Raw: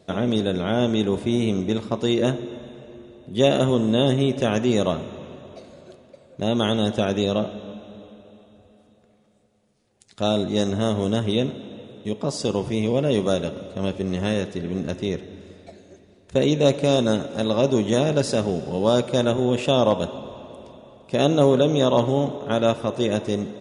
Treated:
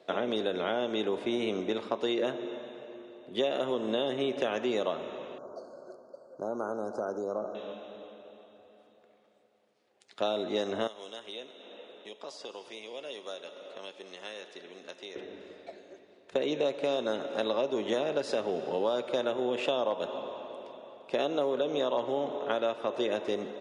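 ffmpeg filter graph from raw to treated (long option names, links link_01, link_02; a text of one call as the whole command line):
ffmpeg -i in.wav -filter_complex "[0:a]asettb=1/sr,asplit=3[link_01][link_02][link_03];[link_01]atrim=end=5.384[link_04];[link_02]atrim=start=5.38:end=7.55,asetpts=PTS-STARTPTS,afade=type=in:duration=0.004:curve=qsin,afade=type=out:start_time=2.166:duration=0.004:curve=qsin,acompressor=threshold=-30dB:ratio=2:attack=3.2:release=140:knee=1:detection=peak,asuperstop=centerf=2600:order=20:qfactor=0.92[link_05];[link_03]atrim=start=7.546[link_06];[link_04][link_05]acrossfade=duration=0.004:curve1=hsin:curve2=qsin[link_07];[link_07][link_06]acrossfade=duration=0.004:curve1=qsin:curve2=hsin,asettb=1/sr,asplit=3[link_08][link_09][link_10];[link_08]atrim=end=10.874[link_11];[link_09]atrim=start=10.87:end=15.16,asetpts=PTS-STARTPTS,afade=type=in:duration=0.004:curve=qsin,afade=type=out:start_time=4.286:duration=0.004:curve=qsin,acrossover=split=3400|7600[link_12][link_13][link_14];[link_12]acompressor=threshold=-34dB:ratio=4[link_15];[link_13]acompressor=threshold=-44dB:ratio=4[link_16];[link_14]acompressor=threshold=-54dB:ratio=4[link_17];[link_15][link_16][link_17]amix=inputs=3:normalize=0,highpass=frequency=650:poles=1,aecho=1:1:210:0.119,atrim=end_sample=189189[link_18];[link_10]atrim=start=15.156[link_19];[link_11][link_18]acrossfade=duration=0.004:curve1=hsin:curve2=qsin[link_20];[link_20][link_19]acrossfade=duration=0.004:curve1=qsin:curve2=hsin,highpass=95,acrossover=split=320 4300:gain=0.0891 1 0.2[link_21][link_22][link_23];[link_21][link_22][link_23]amix=inputs=3:normalize=0,acompressor=threshold=-26dB:ratio=6" out.wav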